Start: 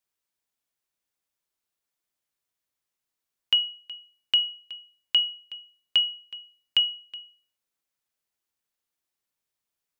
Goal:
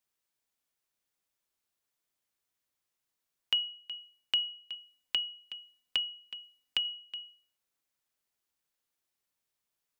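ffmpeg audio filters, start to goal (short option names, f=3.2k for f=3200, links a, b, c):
-filter_complex "[0:a]asettb=1/sr,asplit=3[a][b][c];[a]atrim=end=4.744[d];[b]atrim=start=4.74:end=6.85,asetpts=PTS-STARTPTS,afade=t=in:d=0.004:c=qsin,afade=t=out:st=2.106:d=0.004:c=qsin,aecho=1:1:4:0.67,atrim=end_sample=93051[e];[c]atrim=start=6.846[f];[d][e]acrossfade=d=0.004:c1=hsin:c2=qsin[g];[g][f]acrossfade=d=0.004:c1=qsin:c2=hsin,acrossover=split=130[h][i];[i]acompressor=threshold=-39dB:ratio=1.5[j];[h][j]amix=inputs=2:normalize=0"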